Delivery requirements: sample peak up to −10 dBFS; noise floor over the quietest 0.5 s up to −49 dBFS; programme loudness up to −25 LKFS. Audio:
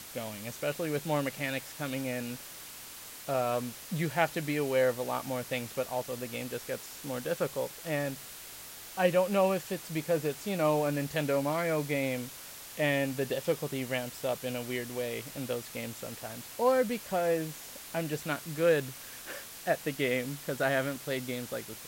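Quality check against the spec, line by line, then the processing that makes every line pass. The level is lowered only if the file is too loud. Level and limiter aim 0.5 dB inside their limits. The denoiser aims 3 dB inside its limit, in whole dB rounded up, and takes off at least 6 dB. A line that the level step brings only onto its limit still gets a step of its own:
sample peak −12.5 dBFS: in spec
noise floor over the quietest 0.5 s −46 dBFS: out of spec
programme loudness −32.5 LKFS: in spec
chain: broadband denoise 6 dB, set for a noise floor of −46 dBFS

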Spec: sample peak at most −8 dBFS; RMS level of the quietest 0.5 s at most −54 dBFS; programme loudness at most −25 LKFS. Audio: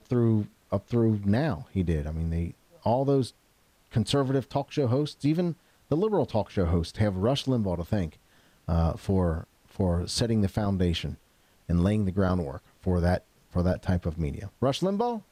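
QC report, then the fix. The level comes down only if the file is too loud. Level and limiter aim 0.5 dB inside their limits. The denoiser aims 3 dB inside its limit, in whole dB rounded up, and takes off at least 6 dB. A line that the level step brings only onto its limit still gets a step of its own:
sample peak −15.0 dBFS: in spec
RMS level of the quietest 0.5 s −64 dBFS: in spec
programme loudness −28.0 LKFS: in spec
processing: no processing needed

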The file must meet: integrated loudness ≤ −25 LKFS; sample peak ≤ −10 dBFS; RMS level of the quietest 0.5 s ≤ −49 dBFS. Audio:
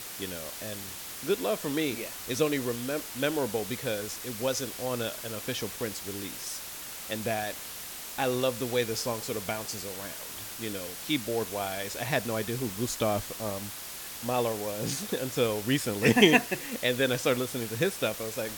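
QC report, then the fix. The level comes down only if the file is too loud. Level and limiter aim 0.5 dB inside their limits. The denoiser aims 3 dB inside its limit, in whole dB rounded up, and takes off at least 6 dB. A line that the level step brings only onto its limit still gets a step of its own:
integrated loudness −30.0 LKFS: in spec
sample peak −6.0 dBFS: out of spec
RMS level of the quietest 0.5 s −41 dBFS: out of spec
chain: broadband denoise 11 dB, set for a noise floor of −41 dBFS
brickwall limiter −10.5 dBFS

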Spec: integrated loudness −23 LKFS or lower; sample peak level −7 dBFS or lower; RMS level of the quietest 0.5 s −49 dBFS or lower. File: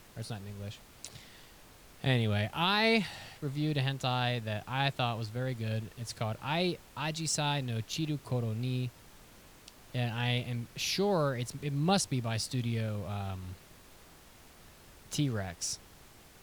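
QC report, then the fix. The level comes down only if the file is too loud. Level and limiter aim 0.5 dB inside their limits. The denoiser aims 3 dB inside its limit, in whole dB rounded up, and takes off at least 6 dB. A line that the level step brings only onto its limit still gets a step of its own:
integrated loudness −33.0 LKFS: in spec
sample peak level −16.0 dBFS: in spec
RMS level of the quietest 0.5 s −56 dBFS: in spec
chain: no processing needed

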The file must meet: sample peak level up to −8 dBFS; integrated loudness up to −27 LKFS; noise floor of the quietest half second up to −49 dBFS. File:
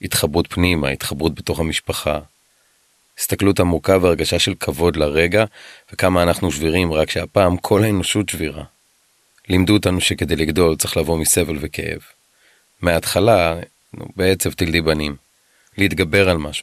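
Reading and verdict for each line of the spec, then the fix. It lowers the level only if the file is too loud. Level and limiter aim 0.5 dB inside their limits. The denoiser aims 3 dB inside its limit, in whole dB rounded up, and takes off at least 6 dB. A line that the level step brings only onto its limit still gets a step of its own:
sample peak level −1.5 dBFS: out of spec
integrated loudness −17.5 LKFS: out of spec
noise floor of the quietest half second −60 dBFS: in spec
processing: level −10 dB

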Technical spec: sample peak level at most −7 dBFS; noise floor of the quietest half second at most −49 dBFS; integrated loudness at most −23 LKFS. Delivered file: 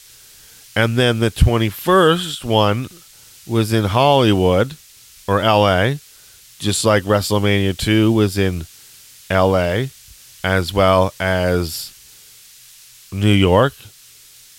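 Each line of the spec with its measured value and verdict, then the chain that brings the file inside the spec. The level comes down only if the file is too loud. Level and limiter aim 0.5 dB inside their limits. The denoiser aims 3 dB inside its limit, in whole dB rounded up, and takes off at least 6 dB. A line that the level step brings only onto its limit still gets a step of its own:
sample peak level −2.0 dBFS: out of spec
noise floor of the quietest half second −45 dBFS: out of spec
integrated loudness −16.5 LKFS: out of spec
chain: level −7 dB

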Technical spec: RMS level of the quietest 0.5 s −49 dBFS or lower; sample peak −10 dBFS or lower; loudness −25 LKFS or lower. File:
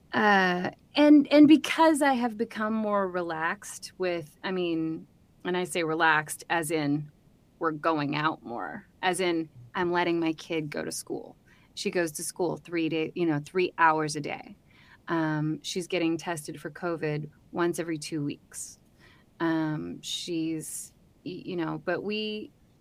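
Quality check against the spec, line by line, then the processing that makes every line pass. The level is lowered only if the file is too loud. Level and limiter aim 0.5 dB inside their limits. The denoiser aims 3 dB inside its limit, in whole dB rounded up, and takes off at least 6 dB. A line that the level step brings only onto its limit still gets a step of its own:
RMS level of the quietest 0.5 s −60 dBFS: in spec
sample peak −8.0 dBFS: out of spec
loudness −27.5 LKFS: in spec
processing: brickwall limiter −10.5 dBFS

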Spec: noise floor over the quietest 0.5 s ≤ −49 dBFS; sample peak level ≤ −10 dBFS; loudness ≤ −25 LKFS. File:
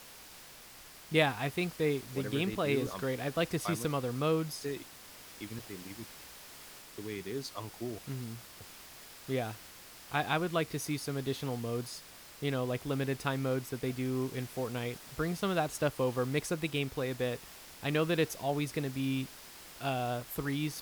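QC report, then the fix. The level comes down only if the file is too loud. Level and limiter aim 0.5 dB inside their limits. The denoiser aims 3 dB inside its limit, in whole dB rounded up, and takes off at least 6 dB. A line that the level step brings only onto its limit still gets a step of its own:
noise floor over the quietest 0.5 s −52 dBFS: in spec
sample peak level −13.5 dBFS: in spec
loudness −34.5 LKFS: in spec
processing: no processing needed

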